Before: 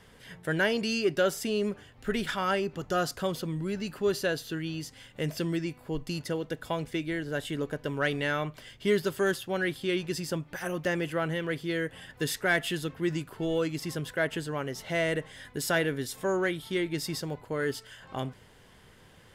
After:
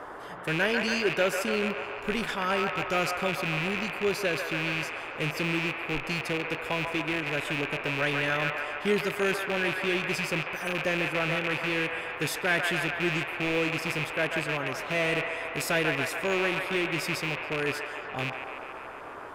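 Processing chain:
loose part that buzzes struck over −38 dBFS, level −19 dBFS
delay with a band-pass on its return 142 ms, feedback 72%, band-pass 1,200 Hz, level −3.5 dB
noise in a band 290–1,500 Hz −41 dBFS
level −1 dB

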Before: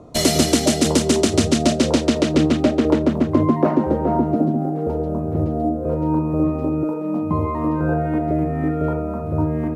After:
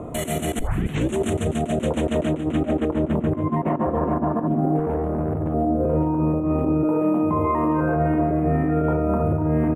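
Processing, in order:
0:03.66–0:04.44: healed spectral selection 560–1,800 Hz before
0:06.99–0:07.96: low-shelf EQ 200 Hz −9 dB
compressor whose output falls as the input rises −22 dBFS, ratio −0.5
brickwall limiter −20 dBFS, peak gain reduction 11 dB
0:00.59: tape start 0.57 s
0:04.79–0:05.54: tube saturation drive 24 dB, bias 0.5
Butterworth band-reject 4,900 Hz, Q 1
echo with shifted repeats 435 ms, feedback 37%, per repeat +35 Hz, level −18.5 dB
level +6.5 dB

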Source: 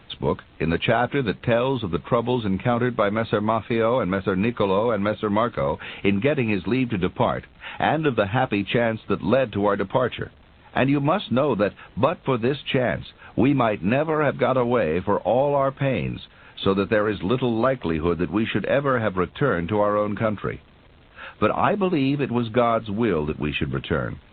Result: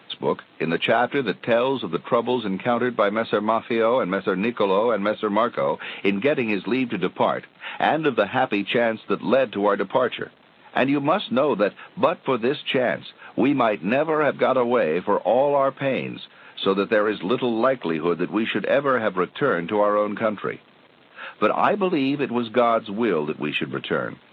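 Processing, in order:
in parallel at −10 dB: soft clipping −16 dBFS, distortion −12 dB
on the sum: Bessel high-pass filter 240 Hz, order 4

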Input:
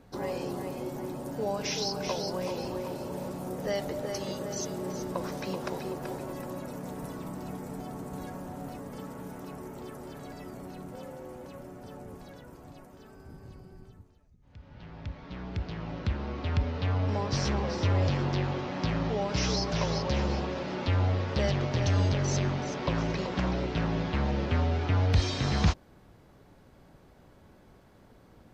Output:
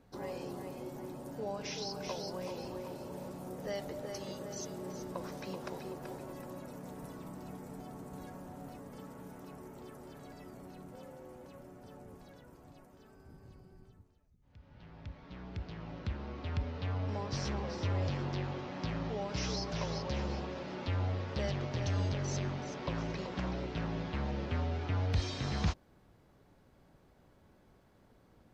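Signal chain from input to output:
0:01.40–0:01.90: high-shelf EQ 10,000 Hz −10.5 dB
level −7.5 dB

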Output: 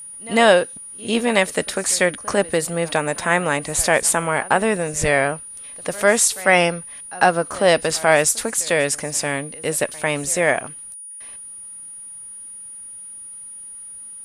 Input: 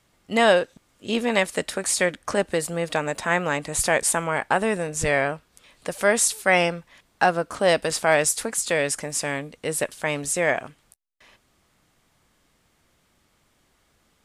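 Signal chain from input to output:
echo ahead of the sound 99 ms −21 dB
steady tone 9,600 Hz −38 dBFS
level +4 dB

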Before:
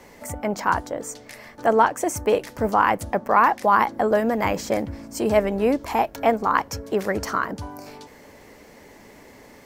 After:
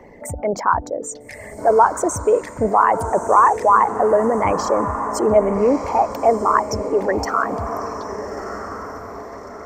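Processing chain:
spectral envelope exaggerated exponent 2
feedback delay with all-pass diffusion 1,288 ms, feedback 42%, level −9.5 dB
level +4 dB

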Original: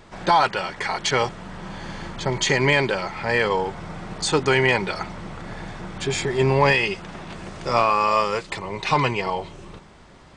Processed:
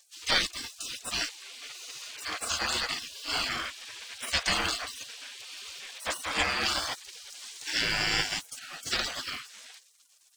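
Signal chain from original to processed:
dead-zone distortion −50 dBFS
gate on every frequency bin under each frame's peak −25 dB weak
level +9 dB

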